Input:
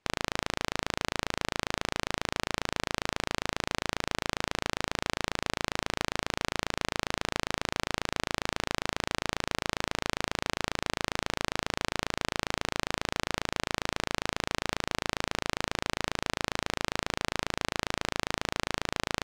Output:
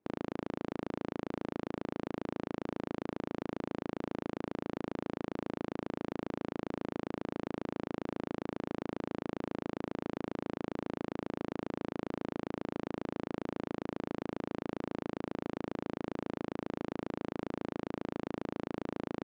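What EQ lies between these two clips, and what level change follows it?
resonant band-pass 280 Hz, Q 1.6
+4.0 dB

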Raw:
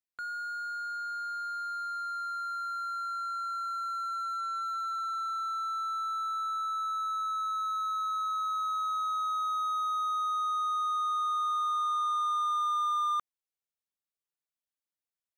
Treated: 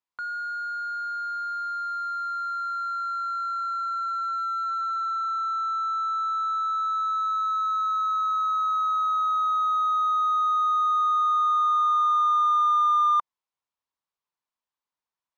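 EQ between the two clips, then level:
low-pass filter 5,600 Hz 12 dB per octave
parametric band 1,000 Hz +12.5 dB 0.62 octaves
+1.5 dB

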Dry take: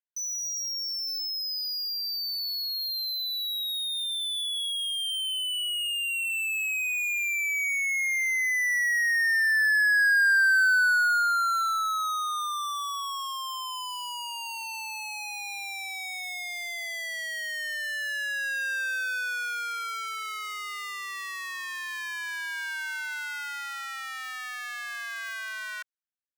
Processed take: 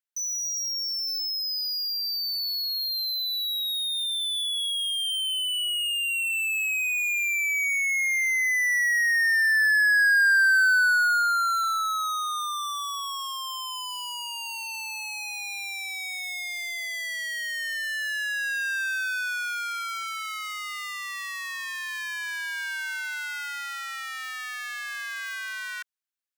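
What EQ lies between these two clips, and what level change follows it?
high-pass filter 1,100 Hz
+2.5 dB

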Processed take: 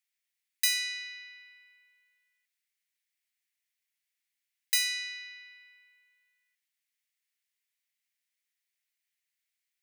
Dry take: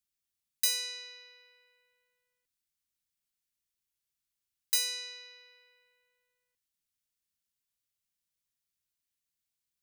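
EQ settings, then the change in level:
high-pass with resonance 2,000 Hz, resonance Q 3.7
0.0 dB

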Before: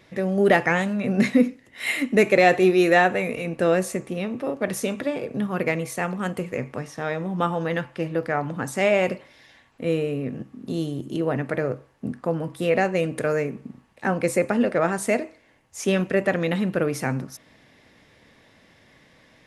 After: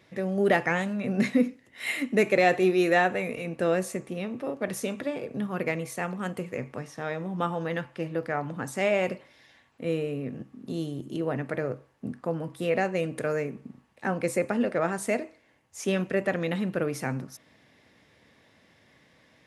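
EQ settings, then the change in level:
high-pass filter 56 Hz
−5.0 dB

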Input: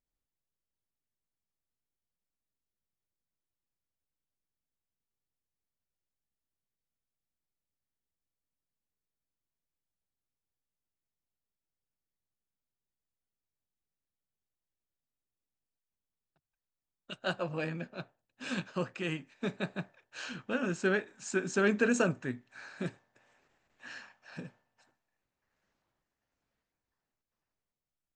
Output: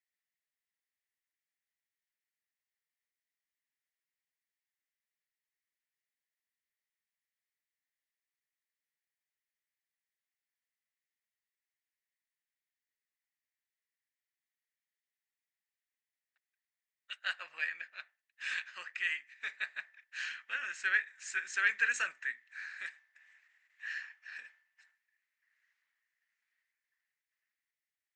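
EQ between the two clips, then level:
high-pass with resonance 1,900 Hz, resonance Q 6.1
−3.5 dB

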